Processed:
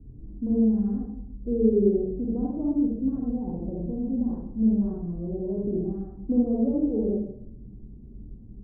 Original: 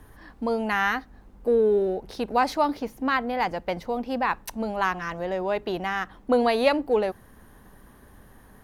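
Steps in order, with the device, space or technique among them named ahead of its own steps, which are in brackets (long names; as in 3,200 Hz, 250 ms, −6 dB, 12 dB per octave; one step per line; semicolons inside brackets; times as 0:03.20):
next room (low-pass filter 320 Hz 24 dB per octave; convolution reverb RT60 0.70 s, pre-delay 41 ms, DRR −5.5 dB)
level +1.5 dB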